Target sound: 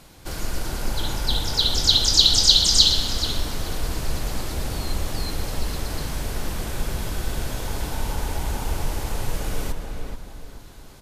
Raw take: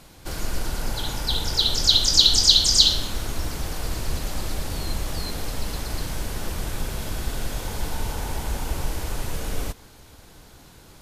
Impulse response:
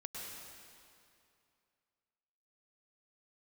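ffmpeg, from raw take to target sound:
-filter_complex "[0:a]asplit=2[a][b];[b]adelay=432,lowpass=f=1.9k:p=1,volume=-4.5dB,asplit=2[c][d];[d]adelay=432,lowpass=f=1.9k:p=1,volume=0.36,asplit=2[e][f];[f]adelay=432,lowpass=f=1.9k:p=1,volume=0.36,asplit=2[g][h];[h]adelay=432,lowpass=f=1.9k:p=1,volume=0.36,asplit=2[i][j];[j]adelay=432,lowpass=f=1.9k:p=1,volume=0.36[k];[a][c][e][g][i][k]amix=inputs=6:normalize=0,asplit=2[l][m];[1:a]atrim=start_sample=2205,asetrate=70560,aresample=44100,adelay=134[n];[m][n]afir=irnorm=-1:irlink=0,volume=-8.5dB[o];[l][o]amix=inputs=2:normalize=0"

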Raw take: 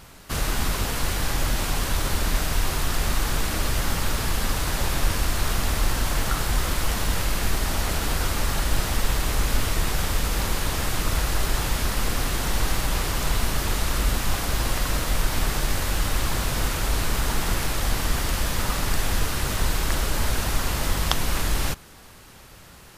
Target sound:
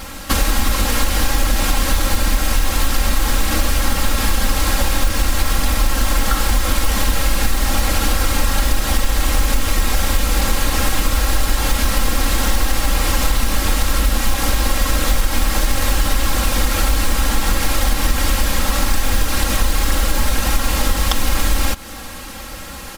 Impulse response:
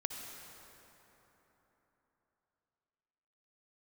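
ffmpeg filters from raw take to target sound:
-af "acontrast=38,acrusher=bits=4:mode=log:mix=0:aa=0.000001,acompressor=threshold=-23dB:ratio=6,aecho=1:1:3.7:0.93,volume=7dB"

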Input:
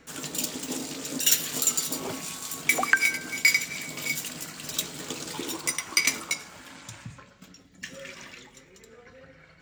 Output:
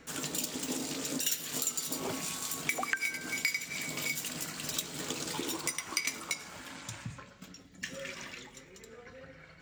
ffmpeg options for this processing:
-af "acompressor=threshold=-32dB:ratio=3"

